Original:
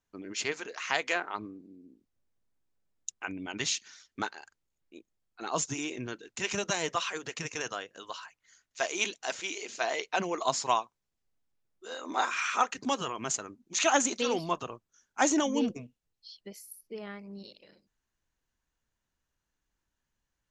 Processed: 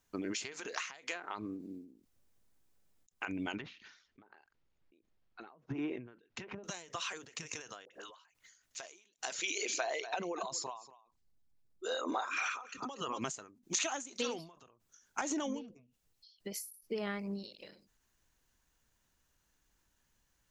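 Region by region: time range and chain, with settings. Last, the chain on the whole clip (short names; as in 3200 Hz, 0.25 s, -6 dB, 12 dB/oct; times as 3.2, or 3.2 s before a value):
3.56–6.64 air absorption 210 m + treble ducked by the level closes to 760 Hz, closed at -30.5 dBFS
7.85–8.25 tone controls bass -11 dB, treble -6 dB + compressor 2.5:1, threshold -54 dBFS + dispersion highs, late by 59 ms, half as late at 860 Hz
9.33–13.24 formant sharpening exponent 1.5 + bell 4300 Hz +4.5 dB 0.37 oct + echo 0.235 s -15 dB
15.21–15.83 high shelf 5700 Hz -9.5 dB + compressor 3:1, threshold -27 dBFS
whole clip: compressor 12:1, threshold -39 dBFS; high shelf 5600 Hz +6 dB; ending taper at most 100 dB/s; gain +6.5 dB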